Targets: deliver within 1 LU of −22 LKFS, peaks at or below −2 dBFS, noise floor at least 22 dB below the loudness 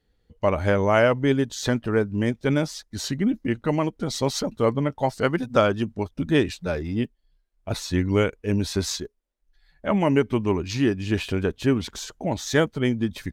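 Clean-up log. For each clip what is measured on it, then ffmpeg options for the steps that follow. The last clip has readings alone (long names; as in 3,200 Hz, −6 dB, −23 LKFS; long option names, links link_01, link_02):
integrated loudness −24.5 LKFS; sample peak −5.5 dBFS; target loudness −22.0 LKFS
→ -af "volume=2.5dB"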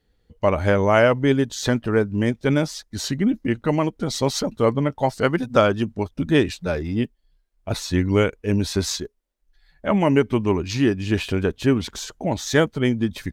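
integrated loudness −22.0 LKFS; sample peak −3.0 dBFS; background noise floor −67 dBFS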